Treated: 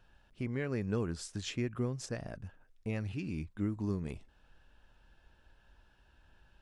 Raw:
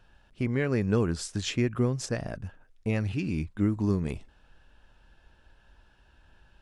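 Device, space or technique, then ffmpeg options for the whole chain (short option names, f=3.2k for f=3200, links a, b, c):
parallel compression: -filter_complex "[0:a]asplit=2[a][b];[b]acompressor=threshold=-43dB:ratio=6,volume=-4dB[c];[a][c]amix=inputs=2:normalize=0,volume=-9dB"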